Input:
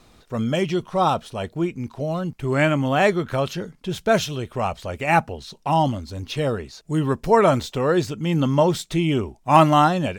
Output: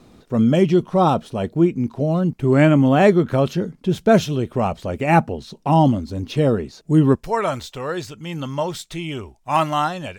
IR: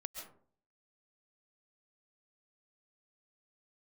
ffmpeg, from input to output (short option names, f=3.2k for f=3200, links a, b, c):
-af "asetnsamples=n=441:p=0,asendcmd='7.15 equalizer g -7',equalizer=f=240:t=o:w=2.7:g=11,volume=-2dB"